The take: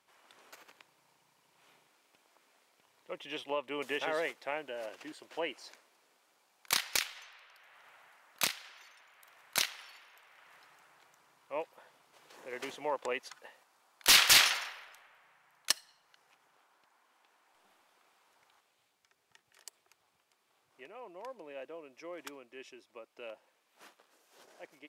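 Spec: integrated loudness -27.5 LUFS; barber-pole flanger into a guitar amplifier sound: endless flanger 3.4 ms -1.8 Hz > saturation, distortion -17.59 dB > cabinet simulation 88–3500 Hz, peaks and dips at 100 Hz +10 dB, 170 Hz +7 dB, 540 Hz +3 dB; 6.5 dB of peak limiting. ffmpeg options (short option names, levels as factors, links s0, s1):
-filter_complex "[0:a]alimiter=limit=0.0891:level=0:latency=1,asplit=2[s0][s1];[s1]adelay=3.4,afreqshift=-1.8[s2];[s0][s2]amix=inputs=2:normalize=1,asoftclip=threshold=0.0531,highpass=88,equalizer=f=100:t=q:w=4:g=10,equalizer=f=170:t=q:w=4:g=7,equalizer=f=540:t=q:w=4:g=3,lowpass=f=3500:w=0.5412,lowpass=f=3500:w=1.3066,volume=5.96"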